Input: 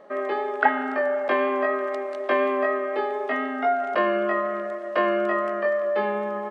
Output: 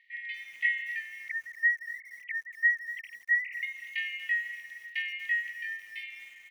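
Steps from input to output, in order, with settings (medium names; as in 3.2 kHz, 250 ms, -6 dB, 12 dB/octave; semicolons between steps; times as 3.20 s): 1.28–3.63 s: formants replaced by sine waves; brick-wall FIR high-pass 1.8 kHz; distance through air 360 m; bit-crushed delay 238 ms, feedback 35%, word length 9-bit, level -14 dB; trim +7 dB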